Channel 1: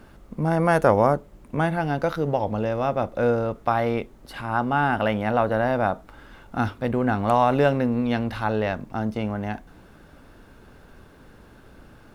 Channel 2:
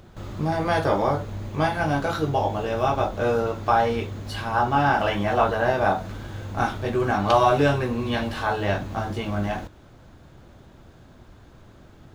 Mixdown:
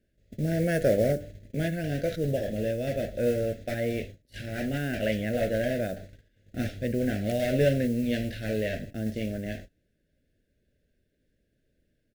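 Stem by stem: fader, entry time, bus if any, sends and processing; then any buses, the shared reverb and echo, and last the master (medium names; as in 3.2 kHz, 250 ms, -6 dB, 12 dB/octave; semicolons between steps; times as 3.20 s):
-3.5 dB, 0.00 s, no send, de-hum 98.26 Hz, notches 31; modulation noise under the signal 25 dB
-9.5 dB, 12 ms, no send, comb filter that takes the minimum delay 1.5 ms; trance gate "x.xxxxxx..xxx" 189 bpm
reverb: none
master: gate -39 dBFS, range -20 dB; Chebyshev band-stop 610–1700 Hz, order 3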